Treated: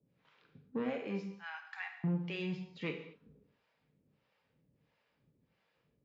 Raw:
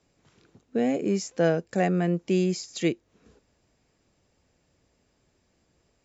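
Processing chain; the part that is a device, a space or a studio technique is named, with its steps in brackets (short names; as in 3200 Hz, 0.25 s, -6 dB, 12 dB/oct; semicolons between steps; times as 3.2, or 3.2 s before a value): 1.36–2.04 steep high-pass 800 Hz 96 dB/oct; guitar amplifier with harmonic tremolo (harmonic tremolo 1.5 Hz, depth 100%, crossover 500 Hz; soft clip -27.5 dBFS, distortion -12 dB; speaker cabinet 84–3700 Hz, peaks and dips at 86 Hz -7 dB, 140 Hz +5 dB, 340 Hz -6 dB, 690 Hz -6 dB); non-linear reverb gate 0.27 s falling, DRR 3.5 dB; gain -2 dB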